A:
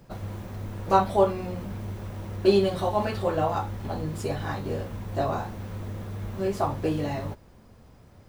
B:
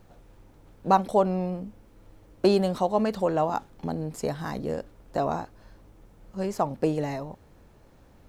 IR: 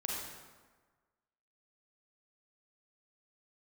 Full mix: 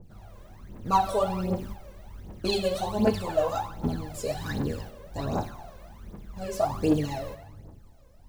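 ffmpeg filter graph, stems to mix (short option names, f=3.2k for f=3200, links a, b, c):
-filter_complex "[0:a]volume=-11.5dB,asplit=2[a][b];[b]volume=-4.5dB[c];[1:a]equalizer=f=1.6k:t=o:w=1.6:g=-13.5,volume=-5dB,asplit=2[d][e];[e]apad=whole_len=365279[f];[a][f]sidechaingate=range=-33dB:threshold=-47dB:ratio=16:detection=peak[g];[2:a]atrim=start_sample=2205[h];[c][h]afir=irnorm=-1:irlink=0[i];[g][d][i]amix=inputs=3:normalize=0,aphaser=in_gain=1:out_gain=1:delay=2:decay=0.73:speed=1.3:type=triangular,adynamicequalizer=threshold=0.00631:dfrequency=2400:dqfactor=0.7:tfrequency=2400:tqfactor=0.7:attack=5:release=100:ratio=0.375:range=3:mode=boostabove:tftype=highshelf"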